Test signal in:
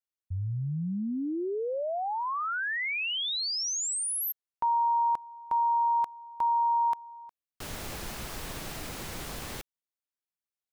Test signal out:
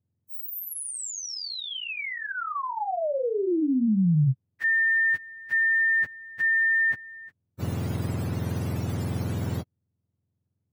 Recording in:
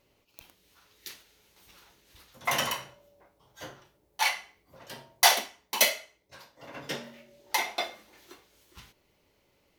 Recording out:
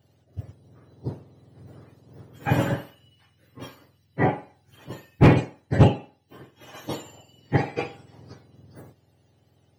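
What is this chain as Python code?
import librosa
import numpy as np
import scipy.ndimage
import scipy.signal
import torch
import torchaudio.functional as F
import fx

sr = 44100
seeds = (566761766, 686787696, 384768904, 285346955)

y = fx.octave_mirror(x, sr, pivot_hz=1300.0)
y = np.clip(10.0 ** (11.5 / 20.0) * y, -1.0, 1.0) / 10.0 ** (11.5 / 20.0)
y = y * 10.0 ** (3.0 / 20.0)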